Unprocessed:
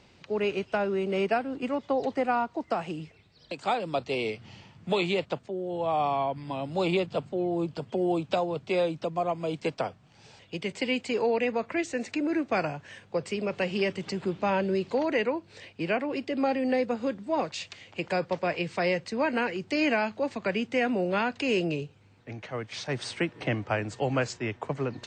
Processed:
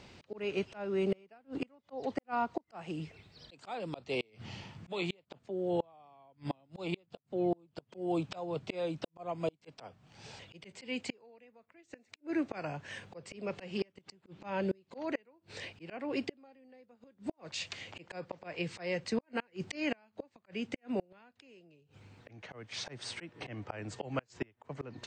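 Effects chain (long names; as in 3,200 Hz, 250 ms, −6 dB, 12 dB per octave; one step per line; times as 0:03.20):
volume swells 480 ms
gate with flip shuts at −25 dBFS, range −35 dB
level +3 dB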